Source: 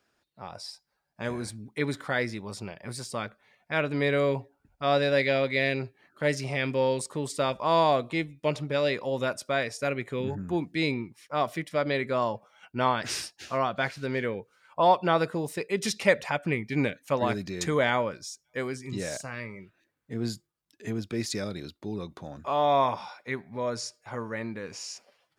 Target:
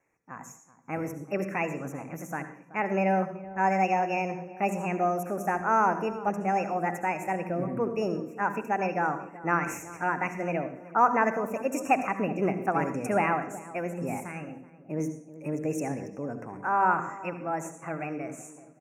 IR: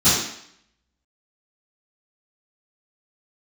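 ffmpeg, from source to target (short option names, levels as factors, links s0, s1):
-filter_complex "[0:a]asplit=2[s0][s1];[1:a]atrim=start_sample=2205,adelay=79[s2];[s1][s2]afir=irnorm=-1:irlink=0,volume=0.0299[s3];[s0][s3]amix=inputs=2:normalize=0,asetrate=59535,aresample=44100,asuperstop=centerf=3900:order=20:qfactor=1.4,highshelf=f=4100:g=-10,asplit=2[s4][s5];[s5]adelay=378,lowpass=f=990:p=1,volume=0.168,asplit=2[s6][s7];[s7]adelay=378,lowpass=f=990:p=1,volume=0.4,asplit=2[s8][s9];[s9]adelay=378,lowpass=f=990:p=1,volume=0.4,asplit=2[s10][s11];[s11]adelay=378,lowpass=f=990:p=1,volume=0.4[s12];[s4][s6][s8][s10][s12]amix=inputs=5:normalize=0"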